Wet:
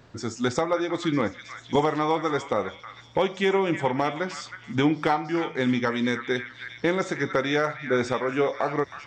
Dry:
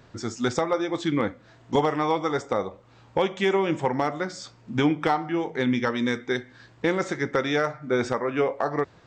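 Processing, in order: repeats whose band climbs or falls 317 ms, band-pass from 1.7 kHz, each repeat 0.7 oct, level -6 dB

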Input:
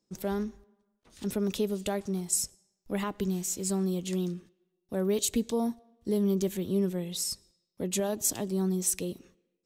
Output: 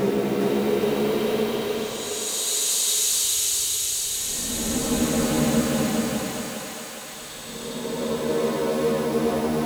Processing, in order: cycle switcher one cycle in 3, muted; Paulstretch 19×, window 0.10 s, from 5.10 s; thinning echo 410 ms, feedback 78%, high-pass 560 Hz, level -3 dB; trim +4.5 dB

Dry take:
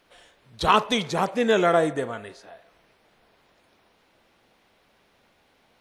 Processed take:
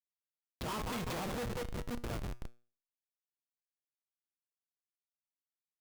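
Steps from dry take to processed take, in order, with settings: fade-in on the opening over 1.31 s; 1.44–2.04 s: amplifier tone stack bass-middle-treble 6-0-2; on a send: two-band feedback delay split 400 Hz, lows 508 ms, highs 189 ms, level -8 dB; on the sum: Schmitt trigger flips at -30 dBFS; feedback comb 120 Hz, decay 0.39 s, harmonics all, mix 50%

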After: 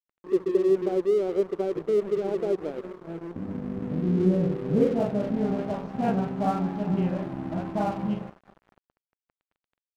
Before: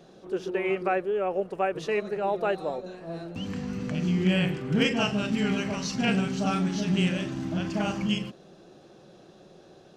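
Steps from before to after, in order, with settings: multi-head delay 201 ms, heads first and second, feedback 52%, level -22 dB; low-pass sweep 380 Hz -> 880 Hz, 3.95–6.21 s; crossover distortion -40 dBFS

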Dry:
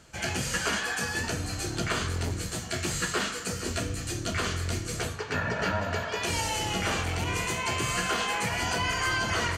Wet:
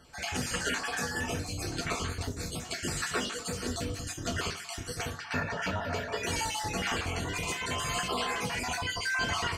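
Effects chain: random holes in the spectrogram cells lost 31%; on a send: high-pass 170 Hz 12 dB/octave + reverberation RT60 0.35 s, pre-delay 3 ms, DRR 4.5 dB; on the sum: trim -2.5 dB

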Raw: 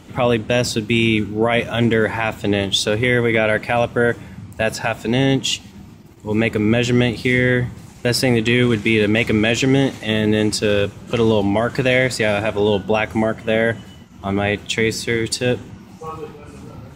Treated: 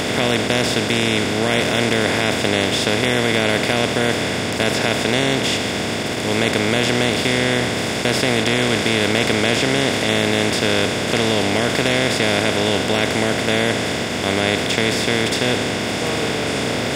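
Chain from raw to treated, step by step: spectral levelling over time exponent 0.2; trim -9.5 dB

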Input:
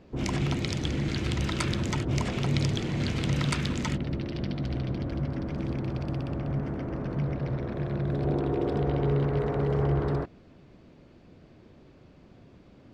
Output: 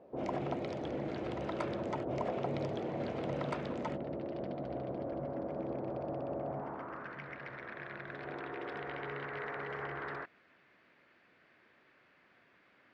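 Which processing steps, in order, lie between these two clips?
band-pass sweep 620 Hz -> 1.8 kHz, 6.43–7.17 s; trim +5 dB

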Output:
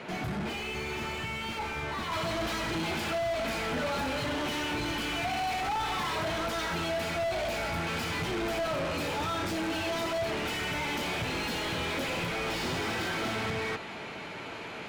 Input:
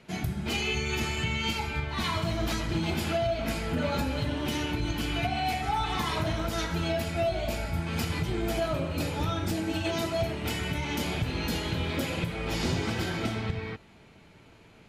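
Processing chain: overdrive pedal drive 34 dB, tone 1.2 kHz, clips at -19 dBFS, from 2.12 s tone 2.6 kHz; trim -6 dB

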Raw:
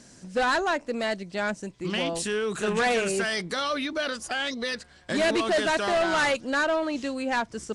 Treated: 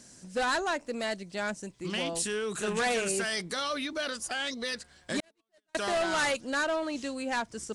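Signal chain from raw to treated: 5.20–5.75 s: gate -18 dBFS, range -55 dB; treble shelf 6.9 kHz +11.5 dB; trim -5 dB

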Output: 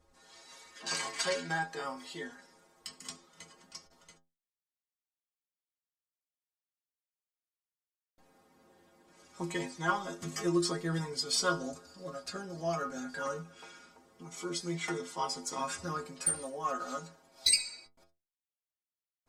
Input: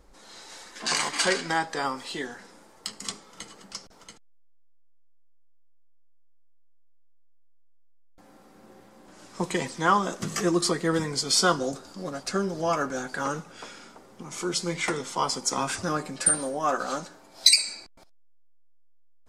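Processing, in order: Chebyshev shaper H 4 -28 dB, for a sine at -2 dBFS; inharmonic resonator 81 Hz, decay 0.33 s, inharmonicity 0.008

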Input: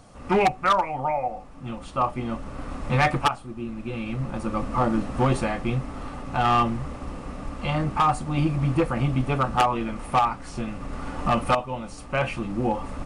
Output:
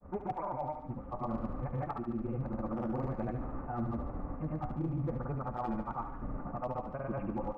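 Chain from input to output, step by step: reverse; compression 16:1, threshold -29 dBFS, peak gain reduction 13.5 dB; reverse; Gaussian low-pass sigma 6.4 samples; time stretch by phase-locked vocoder 0.58×; hard clipper -26.5 dBFS, distortion -28 dB; granulator, pitch spread up and down by 0 st; on a send: thinning echo 72 ms, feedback 67%, high-pass 600 Hz, level -7 dB

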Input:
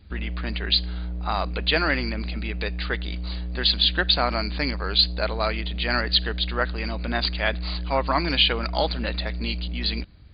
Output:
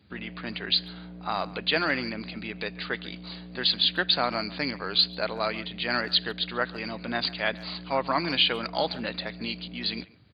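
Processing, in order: high-pass 110 Hz 24 dB/octave; speakerphone echo 140 ms, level -19 dB; trim -3 dB

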